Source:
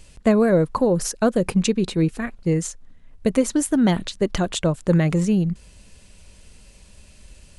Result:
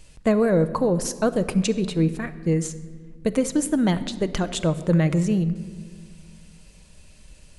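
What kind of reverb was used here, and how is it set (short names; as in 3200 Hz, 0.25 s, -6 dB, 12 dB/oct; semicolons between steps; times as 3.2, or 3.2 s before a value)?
shoebox room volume 2300 m³, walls mixed, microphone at 0.54 m; gain -2.5 dB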